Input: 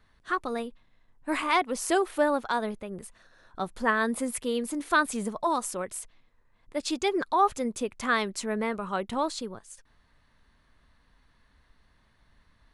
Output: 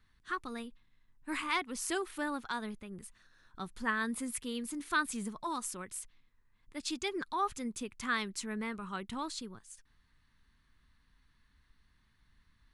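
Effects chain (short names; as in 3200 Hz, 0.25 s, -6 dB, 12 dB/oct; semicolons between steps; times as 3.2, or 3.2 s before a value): bell 600 Hz -14 dB 1.1 oct; gain -4.5 dB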